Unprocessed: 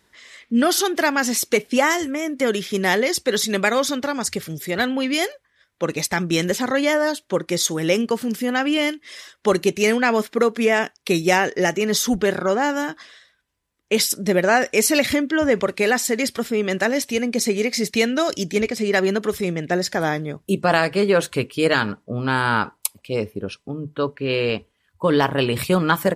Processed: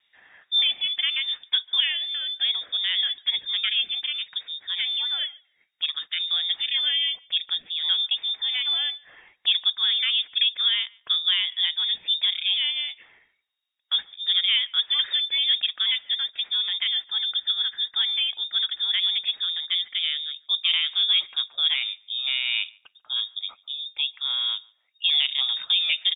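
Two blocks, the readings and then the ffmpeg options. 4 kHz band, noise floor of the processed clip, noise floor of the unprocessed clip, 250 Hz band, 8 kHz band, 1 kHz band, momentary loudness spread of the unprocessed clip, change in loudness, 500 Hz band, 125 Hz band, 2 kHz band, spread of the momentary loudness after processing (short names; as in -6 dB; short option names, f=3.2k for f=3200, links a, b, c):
+9.5 dB, -69 dBFS, -68 dBFS, under -40 dB, under -40 dB, -23.5 dB, 8 LU, -2.0 dB, under -40 dB, under -40 dB, -9.5 dB, 7 LU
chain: -filter_complex "[0:a]highshelf=f=3k:g=-10.5,acrossover=split=530|1800[a][b][c];[c]acompressor=threshold=-43dB:ratio=6[d];[a][b][d]amix=inputs=3:normalize=0,lowpass=f=3.2k:t=q:w=0.5098,lowpass=f=3.2k:t=q:w=0.6013,lowpass=f=3.2k:t=q:w=0.9,lowpass=f=3.2k:t=q:w=2.563,afreqshift=-3800,asplit=2[e][f];[f]adelay=144,lowpass=f=2.2k:p=1,volume=-23.5dB,asplit=2[g][h];[h]adelay=144,lowpass=f=2.2k:p=1,volume=0.22[i];[e][g][i]amix=inputs=3:normalize=0,volume=-4dB"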